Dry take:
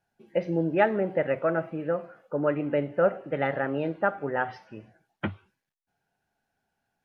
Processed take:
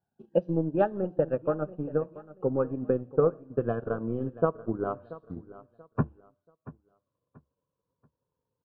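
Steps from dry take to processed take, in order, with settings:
gliding playback speed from 101% → 62%
high-pass filter 110 Hz
transient designer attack +8 dB, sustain −8 dB
Butterworth band-reject 2,100 Hz, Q 2
spectral tilt −3 dB per octave
on a send: repeating echo 683 ms, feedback 29%, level −17.5 dB
on the sum: level −8.5 dB

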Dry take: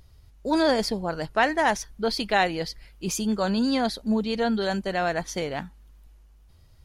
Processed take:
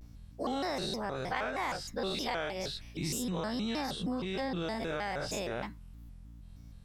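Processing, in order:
every bin's largest magnitude spread in time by 120 ms
downward compressor, threshold −24 dBFS, peak gain reduction 12 dB
mains hum 50 Hz, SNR 15 dB
pitch modulation by a square or saw wave square 3.2 Hz, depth 250 cents
level −7.5 dB

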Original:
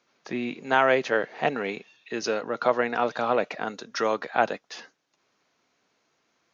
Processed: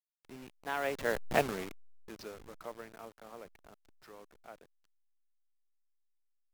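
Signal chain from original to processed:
hold until the input has moved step −27 dBFS
source passing by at 0:01.31, 21 m/s, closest 2.7 metres
level −1.5 dB

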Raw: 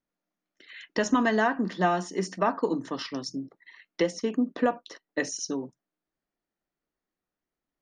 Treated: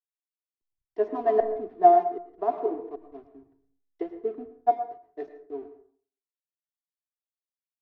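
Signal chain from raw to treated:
comb filter 2.9 ms, depth 55%
in parallel at +1 dB: downward compressor 6 to 1, threshold −34 dBFS, peak gain reduction 16 dB
on the sum: pair of resonant band-passes 550 Hz, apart 0.7 octaves
gate pattern "xxxxxxxx.." 193 BPM −60 dB
slack as between gear wheels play −46.5 dBFS
high-frequency loss of the air 170 metres
convolution reverb RT60 0.75 s, pre-delay 97 ms, DRR 6.5 dB
multiband upward and downward expander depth 100%

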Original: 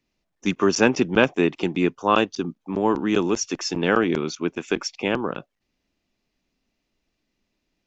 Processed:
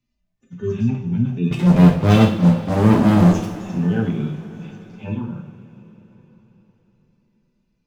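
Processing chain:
harmonic-percussive split with one part muted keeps harmonic
low shelf with overshoot 220 Hz +13 dB, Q 1.5
0:01.51–0:03.54: leveller curve on the samples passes 5
coupled-rooms reverb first 0.44 s, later 4.5 s, from −19 dB, DRR −1.5 dB
level −5.5 dB

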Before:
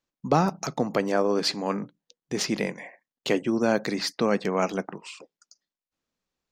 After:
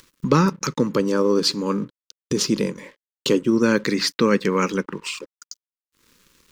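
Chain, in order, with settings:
noise gate −45 dBFS, range −7 dB
0:00.87–0:03.52: parametric band 2,000 Hz −12 dB 0.79 octaves
upward compression, threshold −26 dBFS
dead-zone distortion −54 dBFS
Butterworth band-reject 710 Hz, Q 1.6
level +7 dB

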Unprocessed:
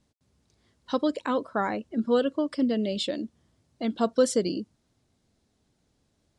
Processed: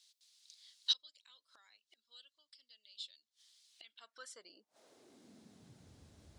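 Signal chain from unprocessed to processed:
gate with flip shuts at −30 dBFS, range −28 dB
high-pass filter sweep 3,900 Hz → 63 Hz, 0:03.66–0:06.09
level +7.5 dB

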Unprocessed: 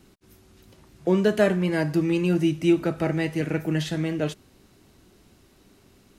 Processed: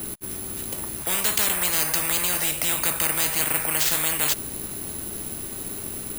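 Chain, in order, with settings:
bad sample-rate conversion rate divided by 4×, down filtered, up zero stuff
every bin compressed towards the loudest bin 10 to 1
level −6.5 dB

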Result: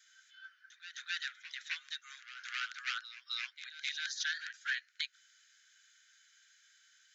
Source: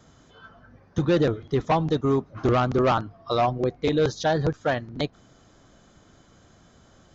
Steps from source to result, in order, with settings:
Chebyshev high-pass filter 1,500 Hz, order 6
echo ahead of the sound 262 ms −12 dB
level −2 dB

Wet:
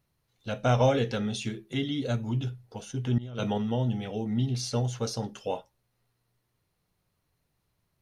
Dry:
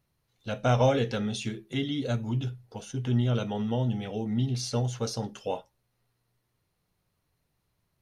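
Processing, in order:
0:03.18–0:03.58: compressor whose output falls as the input rises −31 dBFS, ratio −0.5

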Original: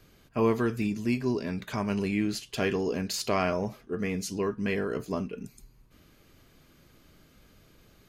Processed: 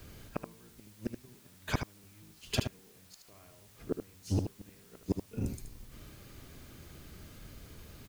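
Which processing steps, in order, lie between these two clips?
sub-octave generator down 1 octave, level +3 dB
gate with flip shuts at −21 dBFS, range −38 dB
background noise white −66 dBFS
on a send: single-tap delay 76 ms −7.5 dB
on the sum: level +3.5 dB

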